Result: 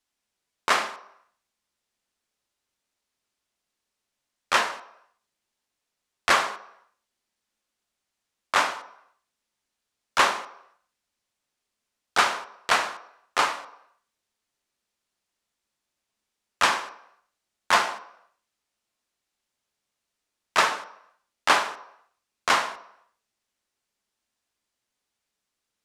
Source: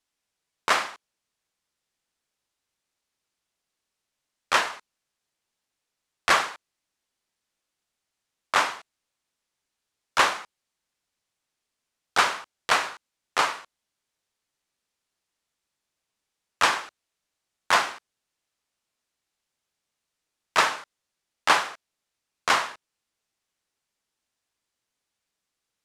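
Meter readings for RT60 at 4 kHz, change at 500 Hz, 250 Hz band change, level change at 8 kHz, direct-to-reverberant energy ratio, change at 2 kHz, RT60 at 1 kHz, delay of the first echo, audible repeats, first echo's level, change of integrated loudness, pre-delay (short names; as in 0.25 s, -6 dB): 0.70 s, +1.0 dB, +1.0 dB, 0.0 dB, 10.5 dB, 0.0 dB, 0.80 s, none, none, none, 0.0 dB, 3 ms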